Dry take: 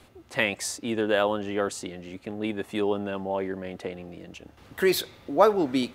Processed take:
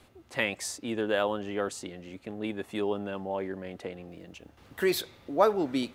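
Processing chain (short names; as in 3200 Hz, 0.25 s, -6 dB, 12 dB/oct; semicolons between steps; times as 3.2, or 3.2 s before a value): 4.1–4.86 block floating point 7-bit; gain -4 dB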